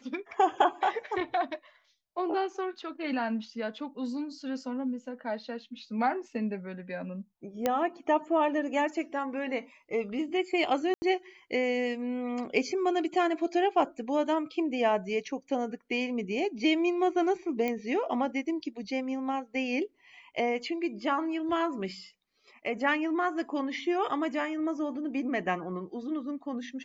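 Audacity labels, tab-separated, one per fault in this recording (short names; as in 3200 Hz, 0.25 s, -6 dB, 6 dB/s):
7.660000	7.660000	pop -13 dBFS
10.940000	11.020000	gap 80 ms
17.680000	17.680000	pop -19 dBFS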